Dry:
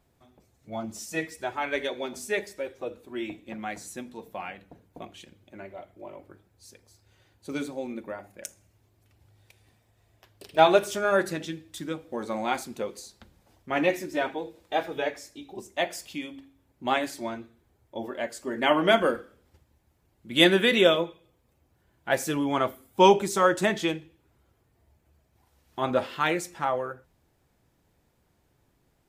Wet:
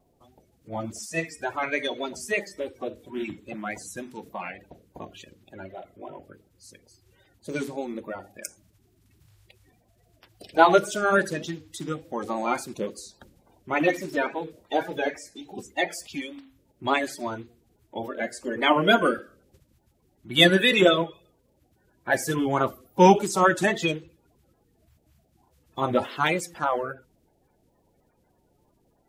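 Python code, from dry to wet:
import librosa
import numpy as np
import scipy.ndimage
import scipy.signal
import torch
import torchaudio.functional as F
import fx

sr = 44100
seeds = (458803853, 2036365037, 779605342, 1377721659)

y = fx.spec_quant(x, sr, step_db=30)
y = fx.vibrato(y, sr, rate_hz=3.5, depth_cents=52.0)
y = y * librosa.db_to_amplitude(2.5)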